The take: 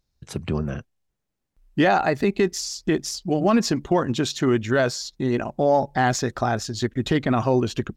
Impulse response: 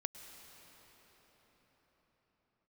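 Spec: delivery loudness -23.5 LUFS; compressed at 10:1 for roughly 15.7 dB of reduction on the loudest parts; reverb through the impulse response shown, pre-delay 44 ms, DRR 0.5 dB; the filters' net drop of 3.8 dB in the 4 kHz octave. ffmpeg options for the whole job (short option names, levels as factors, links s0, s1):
-filter_complex "[0:a]equalizer=f=4000:t=o:g=-5,acompressor=threshold=0.0282:ratio=10,asplit=2[s0][s1];[1:a]atrim=start_sample=2205,adelay=44[s2];[s1][s2]afir=irnorm=-1:irlink=0,volume=1.12[s3];[s0][s3]amix=inputs=2:normalize=0,volume=3.16"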